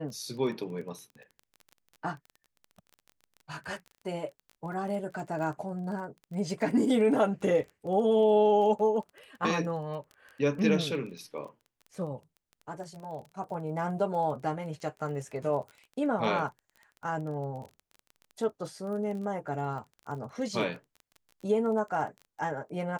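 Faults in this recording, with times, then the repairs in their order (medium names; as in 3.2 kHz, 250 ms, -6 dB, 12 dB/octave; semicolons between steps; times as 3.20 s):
crackle 20 per s -39 dBFS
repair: de-click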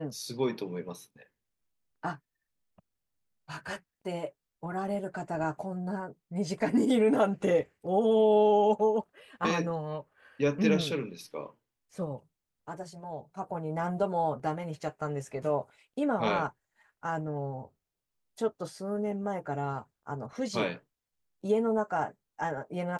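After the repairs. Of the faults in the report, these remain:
nothing left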